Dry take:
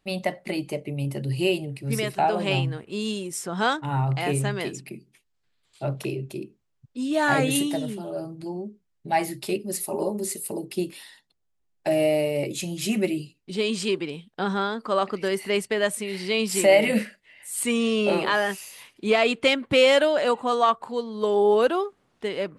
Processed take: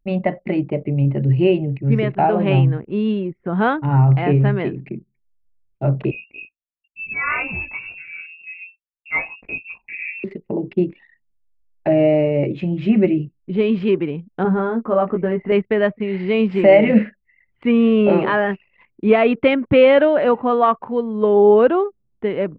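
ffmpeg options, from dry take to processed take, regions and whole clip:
-filter_complex "[0:a]asettb=1/sr,asplit=3[s0][s1][s2];[s0]atrim=end=6.114[s3];[s1]atrim=start=6.11:end=10.24,asetpts=PTS-STARTPTS,afade=t=in:d=0.004:c=qsin,afade=t=out:st=4.126:d=0.004:c=qsin,flanger=delay=18:depth=2.9:speed=1.4,lowpass=f=2500:t=q:w=0.5098,lowpass=f=2500:t=q:w=0.6013,lowpass=f=2500:t=q:w=0.9,lowpass=f=2500:t=q:w=2.563,afreqshift=-2900[s4];[s2]atrim=start=10.236[s5];[s3][s4]acrossfade=d=0.004:c1=hsin:c2=qsin[s6];[s6][s5]acrossfade=d=0.004:c1=qsin:c2=hsin,asettb=1/sr,asplit=3[s7][s8][s9];[s7]atrim=end=14.434[s10];[s8]atrim=start=14.43:end=15.52,asetpts=PTS-STARTPTS,afade=t=in:d=0.004:c=qsin,afade=t=out:st=1.086:d=0.004:c=qsin,lowpass=f=1000:p=1,asplit=2[s11][s12];[s12]adelay=17,volume=0.631[s13];[s11][s13]amix=inputs=2:normalize=0,atrim=end_sample=48069[s14];[s9]atrim=start=15.516[s15];[s10][s14]acrossfade=d=0.004:c1=hsin:c2=qsin[s16];[s16][s15]acrossfade=d=0.004:c1=qsin:c2=hsin,lowpass=f=2500:w=0.5412,lowpass=f=2500:w=1.3066,anlmdn=0.0251,lowshelf=f=450:g=10,volume=1.33"

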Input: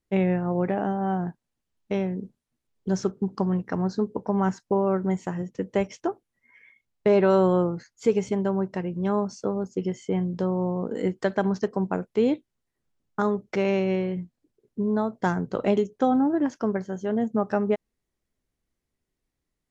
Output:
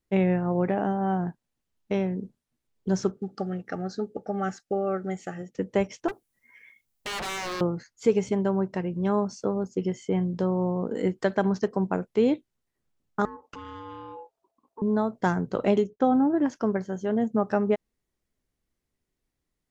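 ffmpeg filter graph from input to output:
-filter_complex "[0:a]asettb=1/sr,asplit=3[s0][s1][s2];[s0]atrim=end=3.174[s3];[s1]atrim=start=3.17:end=5.57,asetpts=PTS-STARTPTS,afade=t=in:d=0.004:c=qsin,afade=t=out:st=2.396:d=0.004:c=qsin,asuperstop=centerf=1000:order=20:qfactor=3.7,lowshelf=f=310:g=-10.5[s4];[s2]atrim=start=5.566[s5];[s3][s4]acrossfade=d=0.004:c1=hsin:c2=qsin[s6];[s6][s5]acrossfade=d=0.004:c1=qsin:c2=hsin,asettb=1/sr,asplit=3[s7][s8][s9];[s7]atrim=end=6.084[s10];[s8]atrim=start=6.08:end=7.61,asetpts=PTS-STARTPTS,afade=t=in:d=0.004:c=qsin,afade=t=out:st=1.526:d=0.004:c=qsin,aemphasis=mode=production:type=50kf,aeval=exprs='0.0422*(abs(mod(val(0)/0.0422+3,4)-2)-1)':c=same[s11];[s9]atrim=start=7.606[s12];[s10][s11]acrossfade=d=0.004:c1=hsin:c2=qsin[s13];[s13][s12]acrossfade=d=0.004:c1=qsin:c2=hsin,asettb=1/sr,asplit=3[s14][s15][s16];[s14]atrim=end=13.254[s17];[s15]atrim=start=13.25:end=14.82,asetpts=PTS-STARTPTS,afade=t=in:d=0.004:c=qsin,afade=t=out:st=1.566:d=0.004:c=qsin,equalizer=f=1600:w=6.7:g=-4,acompressor=threshold=0.0158:ratio=6:attack=3.2:release=140:knee=1:detection=peak,aeval=exprs='val(0)*sin(2*PI*670*n/s)':c=same[s18];[s16]atrim=start=14.816[s19];[s17][s18]acrossfade=d=0.004:c1=hsin:c2=qsin[s20];[s20][s19]acrossfade=d=0.004:c1=qsin:c2=hsin,asettb=1/sr,asplit=3[s21][s22][s23];[s21]atrim=end=15.844[s24];[s22]atrim=start=15.84:end=16.38,asetpts=PTS-STARTPTS,afade=t=in:d=0.004:c=qsin,afade=t=out:st=0.536:d=0.004:c=qsin,lowpass=f=2500:p=1,agate=range=0.0224:threshold=0.00282:ratio=3:release=100:detection=peak[s25];[s23]atrim=start=16.376[s26];[s24][s25]acrossfade=d=0.004:c1=hsin:c2=qsin[s27];[s27][s26]acrossfade=d=0.004:c1=qsin:c2=hsin"

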